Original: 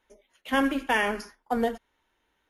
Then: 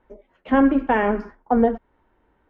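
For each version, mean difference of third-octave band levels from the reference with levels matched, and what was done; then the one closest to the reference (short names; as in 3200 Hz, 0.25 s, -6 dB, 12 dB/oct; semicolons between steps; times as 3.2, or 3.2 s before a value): 7.5 dB: LPF 1300 Hz 12 dB/oct; low shelf 440 Hz +6 dB; in parallel at -1.5 dB: compressor, threshold -33 dBFS, peak gain reduction 15 dB; on the sum: gain +4 dB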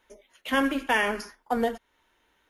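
1.5 dB: low shelf 340 Hz -3 dB; notch 800 Hz, Q 26; in parallel at 0 dB: compressor, threshold -40 dBFS, peak gain reduction 19 dB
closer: second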